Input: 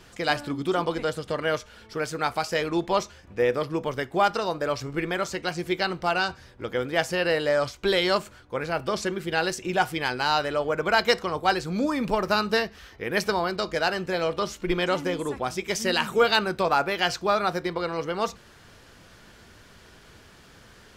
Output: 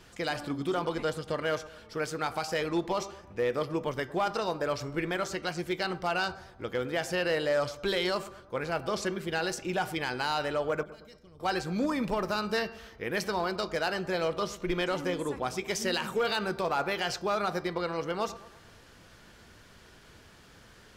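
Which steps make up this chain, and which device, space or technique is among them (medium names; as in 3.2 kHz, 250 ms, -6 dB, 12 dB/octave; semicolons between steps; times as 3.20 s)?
de-hum 392.7 Hz, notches 16; limiter into clipper (peak limiter -15.5 dBFS, peak gain reduction 6.5 dB; hard clipper -18 dBFS, distortion -25 dB); 10.83–11.40 s: amplifier tone stack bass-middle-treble 10-0-1; bucket-brigade echo 111 ms, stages 1024, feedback 49%, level -16 dB; trim -3.5 dB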